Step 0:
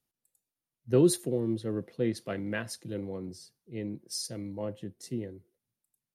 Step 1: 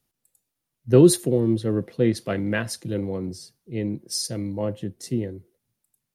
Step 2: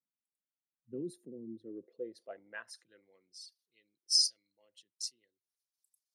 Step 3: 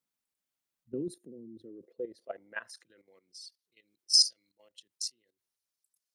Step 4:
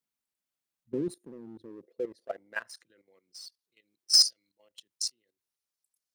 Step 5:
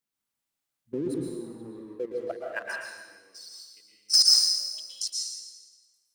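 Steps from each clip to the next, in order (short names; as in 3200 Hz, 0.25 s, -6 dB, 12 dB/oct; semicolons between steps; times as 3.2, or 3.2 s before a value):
low shelf 120 Hz +5 dB; gain +8 dB
formant sharpening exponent 1.5; pre-emphasis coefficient 0.97; band-pass sweep 220 Hz -> 4900 Hz, 1.43–3.8; gain +6 dB
level quantiser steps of 14 dB; gain +8.5 dB
sample leveller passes 1
plate-style reverb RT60 1.2 s, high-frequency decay 1×, pre-delay 0.105 s, DRR -2.5 dB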